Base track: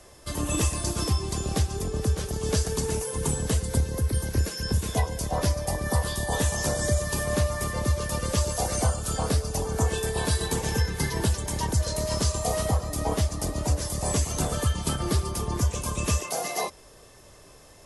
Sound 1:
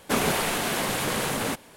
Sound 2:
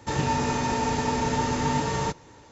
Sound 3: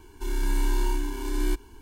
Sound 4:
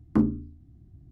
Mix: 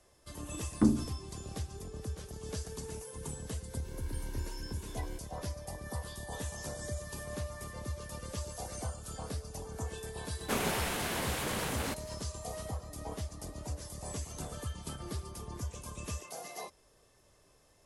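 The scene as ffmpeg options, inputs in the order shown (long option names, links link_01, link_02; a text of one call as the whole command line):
ffmpeg -i bed.wav -i cue0.wav -i cue1.wav -i cue2.wav -i cue3.wav -filter_complex "[0:a]volume=-14.5dB[link_01];[4:a]atrim=end=1.11,asetpts=PTS-STARTPTS,volume=-3.5dB,afade=type=in:duration=0.004:curve=hsin,afade=type=out:start_time=1.106:duration=0.004:curve=hsin,adelay=660[link_02];[3:a]atrim=end=1.81,asetpts=PTS-STARTPTS,volume=-17.5dB,afade=type=in:duration=0.004:curve=hsin,afade=type=out:start_time=1.806:duration=0.004:curve=hsin,adelay=3630[link_03];[1:a]atrim=end=1.76,asetpts=PTS-STARTPTS,volume=-8.5dB,afade=type=in:duration=0.004:curve=hsin,afade=type=out:start_time=1.756:duration=0.004:curve=hsin,adelay=10390[link_04];[link_01][link_02][link_03][link_04]amix=inputs=4:normalize=0" out.wav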